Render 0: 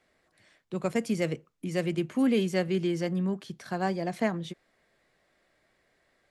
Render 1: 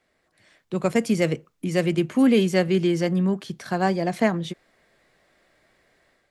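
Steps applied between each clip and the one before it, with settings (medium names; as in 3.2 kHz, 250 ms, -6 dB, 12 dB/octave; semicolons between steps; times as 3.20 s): level rider gain up to 7 dB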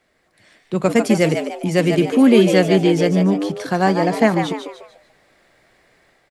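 frequency-shifting echo 147 ms, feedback 37%, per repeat +110 Hz, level -7 dB; trim +5.5 dB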